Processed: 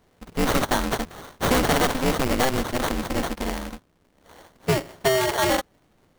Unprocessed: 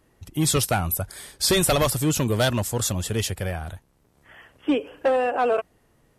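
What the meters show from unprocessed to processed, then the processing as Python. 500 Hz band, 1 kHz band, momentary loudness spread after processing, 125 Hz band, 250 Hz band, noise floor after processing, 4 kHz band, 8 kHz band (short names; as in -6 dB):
-0.5 dB, +2.0 dB, 11 LU, -4.5 dB, +0.5 dB, -63 dBFS, -1.0 dB, -5.5 dB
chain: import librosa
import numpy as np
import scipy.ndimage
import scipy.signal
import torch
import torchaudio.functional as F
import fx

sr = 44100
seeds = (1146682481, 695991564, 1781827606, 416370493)

y = fx.sample_hold(x, sr, seeds[0], rate_hz=2500.0, jitter_pct=0)
y = y * np.sign(np.sin(2.0 * np.pi * 130.0 * np.arange(len(y)) / sr))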